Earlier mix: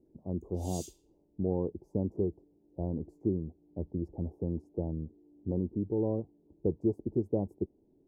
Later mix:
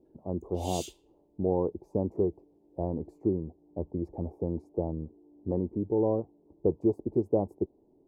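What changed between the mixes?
background: send -8.5 dB; master: remove FFT filter 200 Hz 0 dB, 3 kHz -18 dB, 5.4 kHz -4 dB

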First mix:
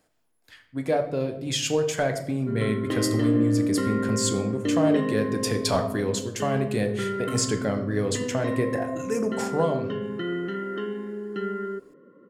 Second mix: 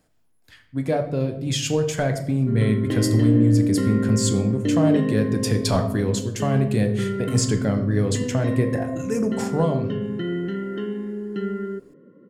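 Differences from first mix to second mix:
background: add peaking EQ 1.2 kHz -12 dB 0.3 oct; master: add tone controls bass +9 dB, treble +1 dB

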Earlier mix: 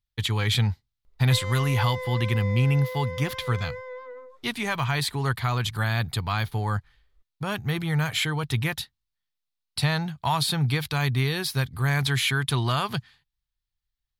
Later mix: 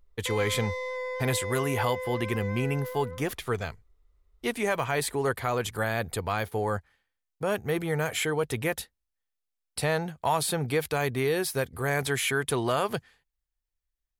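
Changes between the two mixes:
speech: add graphic EQ 125/500/1000/4000/8000 Hz -11/+11/-4/-10/+4 dB; background: entry -1.05 s

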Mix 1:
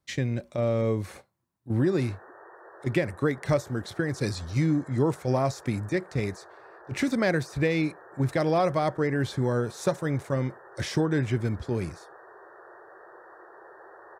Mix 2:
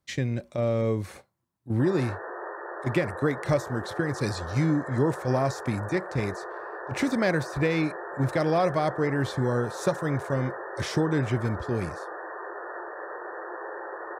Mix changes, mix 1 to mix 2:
background +4.5 dB; reverb: on, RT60 1.0 s

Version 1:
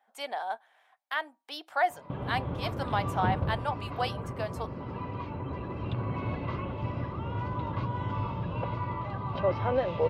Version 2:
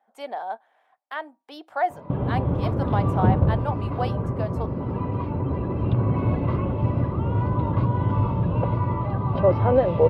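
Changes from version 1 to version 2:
background +4.0 dB; master: add tilt shelf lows +7.5 dB, about 1.2 kHz

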